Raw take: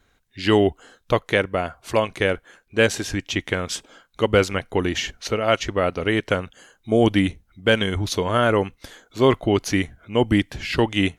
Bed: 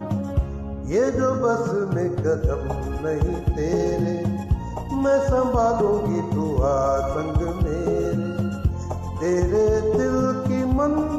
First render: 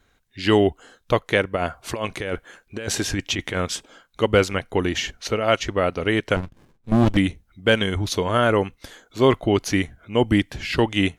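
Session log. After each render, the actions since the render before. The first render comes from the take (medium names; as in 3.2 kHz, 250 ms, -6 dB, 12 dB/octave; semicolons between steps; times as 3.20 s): 1.56–3.67 s: compressor with a negative ratio -25 dBFS; 6.36–7.17 s: sliding maximum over 65 samples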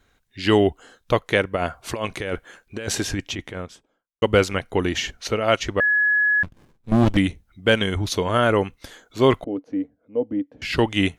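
2.88–4.22 s: studio fade out; 5.80–6.43 s: bleep 1.69 kHz -15.5 dBFS; 9.44–10.62 s: two resonant band-passes 370 Hz, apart 0.72 oct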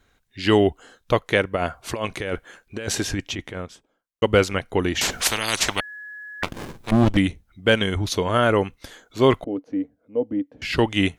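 5.01–6.91 s: spectrum-flattening compressor 10:1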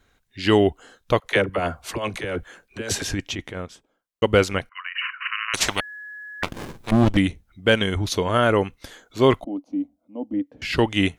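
1.20–3.02 s: phase dispersion lows, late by 42 ms, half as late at 450 Hz; 4.69–5.54 s: brick-wall FIR band-pass 1–3 kHz; 9.40–10.34 s: static phaser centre 450 Hz, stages 6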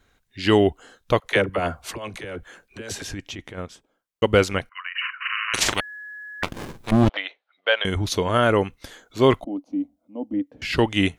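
1.92–3.58 s: compression 1.5:1, threshold -40 dBFS; 5.21–5.74 s: doubling 43 ms -5 dB; 7.09–7.85 s: elliptic band-pass 570–3900 Hz, stop band 60 dB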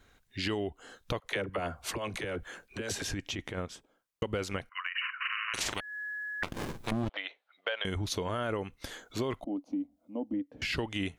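peak limiter -11.5 dBFS, peak gain reduction 6.5 dB; compression 4:1, threshold -32 dBFS, peak gain reduction 14.5 dB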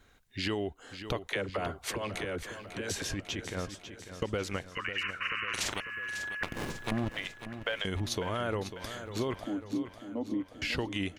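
feedback delay 547 ms, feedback 56%, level -11 dB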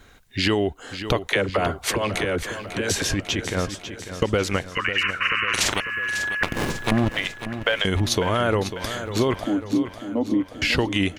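trim +11.5 dB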